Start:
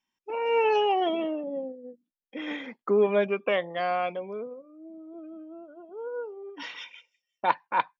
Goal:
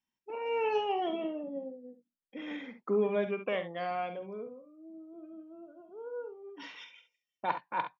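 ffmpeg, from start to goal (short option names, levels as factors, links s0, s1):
-filter_complex "[0:a]equalizer=f=100:w=0.48:g=8,asplit=2[s0][s1];[s1]aecho=0:1:47|68:0.266|0.282[s2];[s0][s2]amix=inputs=2:normalize=0,volume=0.376"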